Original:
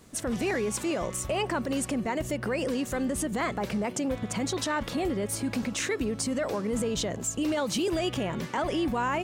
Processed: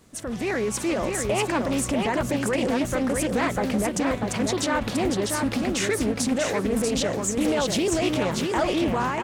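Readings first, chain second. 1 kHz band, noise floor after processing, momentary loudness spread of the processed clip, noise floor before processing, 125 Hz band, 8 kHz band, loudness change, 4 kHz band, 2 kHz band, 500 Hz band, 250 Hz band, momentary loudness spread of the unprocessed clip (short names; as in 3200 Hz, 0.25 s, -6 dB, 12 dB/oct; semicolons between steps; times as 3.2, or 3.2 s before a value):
+4.5 dB, -32 dBFS, 2 LU, -40 dBFS, +5.0 dB, +4.5 dB, +5.0 dB, +4.5 dB, +5.0 dB, +5.0 dB, +5.0 dB, 3 LU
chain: AGC gain up to 5.5 dB; feedback echo 0.641 s, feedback 15%, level -4 dB; Doppler distortion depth 0.32 ms; gain -1.5 dB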